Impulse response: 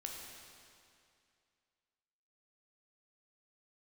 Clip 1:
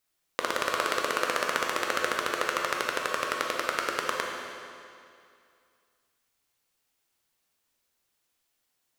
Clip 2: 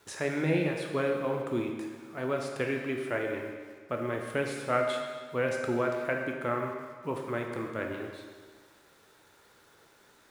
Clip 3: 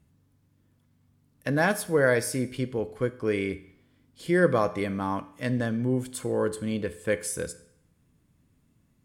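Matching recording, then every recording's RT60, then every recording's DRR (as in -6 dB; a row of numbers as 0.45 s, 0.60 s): 1; 2.4 s, 1.6 s, 0.65 s; -0.5 dB, 1.0 dB, 11.0 dB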